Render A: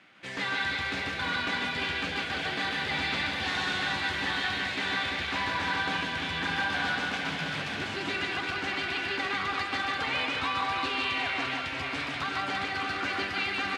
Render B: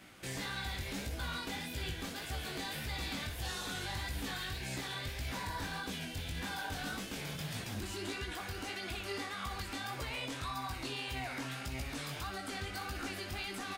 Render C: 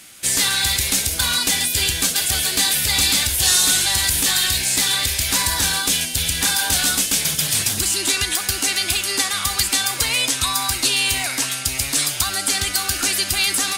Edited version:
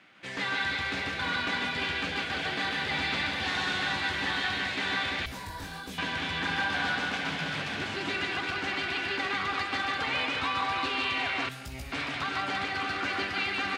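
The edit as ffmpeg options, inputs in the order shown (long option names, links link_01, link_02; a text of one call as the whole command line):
ffmpeg -i take0.wav -i take1.wav -filter_complex "[1:a]asplit=2[link_01][link_02];[0:a]asplit=3[link_03][link_04][link_05];[link_03]atrim=end=5.262[link_06];[link_01]atrim=start=5.258:end=5.982[link_07];[link_04]atrim=start=5.978:end=11.492[link_08];[link_02]atrim=start=11.488:end=11.922[link_09];[link_05]atrim=start=11.918[link_10];[link_06][link_07]acrossfade=duration=0.004:curve1=hsin:curve2=hsin[link_11];[link_11][link_08]acrossfade=duration=0.004:curve1=hsin:curve2=hsin[link_12];[link_12][link_09]acrossfade=duration=0.004:curve1=hsin:curve2=hsin[link_13];[link_13][link_10]acrossfade=duration=0.004:curve1=hsin:curve2=hsin" out.wav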